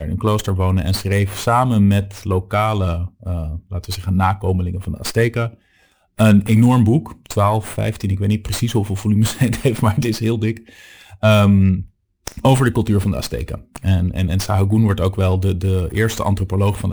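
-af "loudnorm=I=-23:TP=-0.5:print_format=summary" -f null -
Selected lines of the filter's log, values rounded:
Input Integrated:    -17.9 LUFS
Input True Peak:      -3.1 dBTP
Input LRA:             2.3 LU
Input Threshold:     -28.2 LUFS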